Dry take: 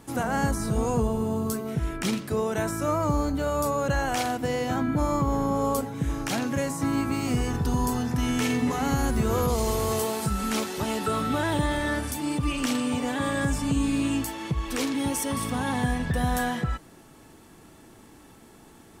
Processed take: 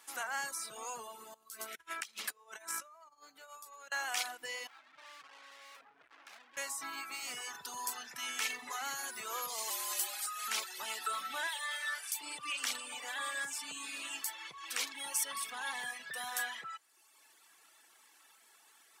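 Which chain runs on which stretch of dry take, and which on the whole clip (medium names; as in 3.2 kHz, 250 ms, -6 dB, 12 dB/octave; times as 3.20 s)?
1.34–3.92 s: feedback delay 114 ms, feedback 46%, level -15 dB + compressor with a negative ratio -33 dBFS, ratio -0.5
4.67–6.57 s: boxcar filter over 12 samples + hum notches 50/100 Hz + valve stage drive 41 dB, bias 0.6
9.70–10.48 s: high-pass 470 Hz 6 dB/octave + treble shelf 8.2 kHz +4 dB + frequency shift -72 Hz
11.47–12.21 s: high-pass 770 Hz + doubling 22 ms -13 dB
whole clip: reverb removal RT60 1.1 s; high-pass 1.4 kHz 12 dB/octave; trim -2 dB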